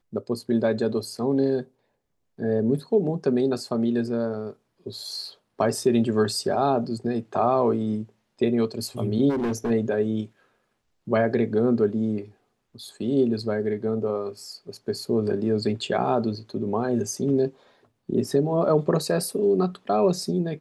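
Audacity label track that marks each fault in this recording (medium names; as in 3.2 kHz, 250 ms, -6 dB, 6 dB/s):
9.290000	9.710000	clipped -22.5 dBFS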